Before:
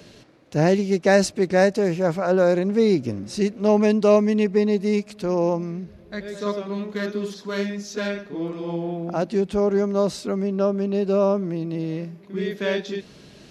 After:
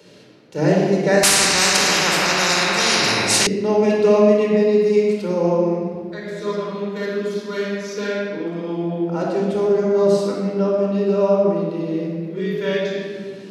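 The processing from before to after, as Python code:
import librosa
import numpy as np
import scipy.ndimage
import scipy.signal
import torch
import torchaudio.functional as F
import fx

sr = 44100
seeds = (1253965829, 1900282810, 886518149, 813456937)

y = scipy.signal.sosfilt(scipy.signal.butter(2, 180.0, 'highpass', fs=sr, output='sos'), x)
y = fx.room_shoebox(y, sr, seeds[0], volume_m3=2900.0, walls='mixed', distance_m=4.5)
y = fx.spectral_comp(y, sr, ratio=10.0, at=(1.23, 3.47))
y = y * 10.0 ** (-4.0 / 20.0)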